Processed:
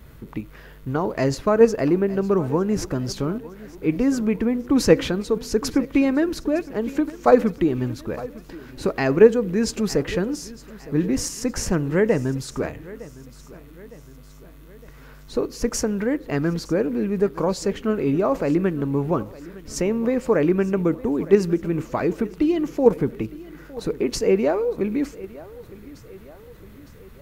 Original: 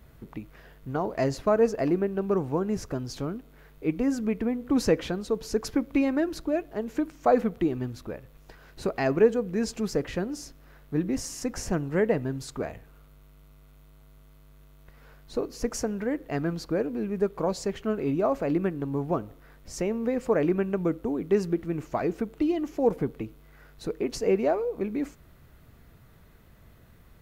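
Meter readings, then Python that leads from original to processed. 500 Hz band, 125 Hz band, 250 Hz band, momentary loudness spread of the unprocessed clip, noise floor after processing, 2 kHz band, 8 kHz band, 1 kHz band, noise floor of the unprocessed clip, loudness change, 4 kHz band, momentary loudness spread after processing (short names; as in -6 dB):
+6.0 dB, +6.5 dB, +6.0 dB, 11 LU, -45 dBFS, +6.5 dB, +7.5 dB, +4.0 dB, -54 dBFS, +6.0 dB, +7.5 dB, 18 LU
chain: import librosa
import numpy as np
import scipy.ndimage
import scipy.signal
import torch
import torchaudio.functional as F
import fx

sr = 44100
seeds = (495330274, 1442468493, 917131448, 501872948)

p1 = fx.echo_feedback(x, sr, ms=910, feedback_pct=48, wet_db=-19.0)
p2 = fx.level_steps(p1, sr, step_db=19)
p3 = p1 + (p2 * 10.0 ** (-2.0 / 20.0))
p4 = fx.peak_eq(p3, sr, hz=700.0, db=-6.5, octaves=0.29)
y = p4 * 10.0 ** (4.5 / 20.0)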